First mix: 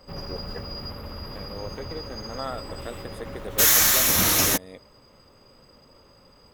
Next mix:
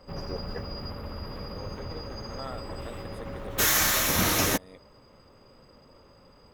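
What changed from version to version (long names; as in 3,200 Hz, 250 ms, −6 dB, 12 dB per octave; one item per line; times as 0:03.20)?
second voice −7.0 dB
background: add high-shelf EQ 3,800 Hz −8 dB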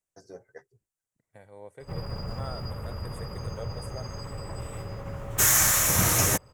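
first voice −5.0 dB
background: entry +1.80 s
master: add octave-band graphic EQ 125/250/4,000/8,000 Hz +9/−7/−8/+10 dB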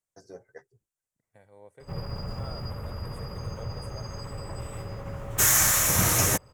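second voice −5.5 dB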